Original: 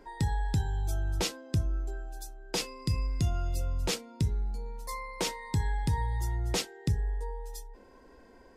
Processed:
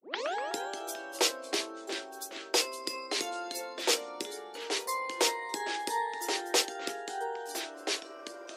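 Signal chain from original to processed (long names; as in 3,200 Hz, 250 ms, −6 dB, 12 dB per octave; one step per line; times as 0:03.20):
turntable start at the beginning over 0.36 s
delay with pitch and tempo change per echo 93 ms, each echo −3 semitones, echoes 3, each echo −6 dB
Butterworth high-pass 330 Hz 36 dB per octave
level +5 dB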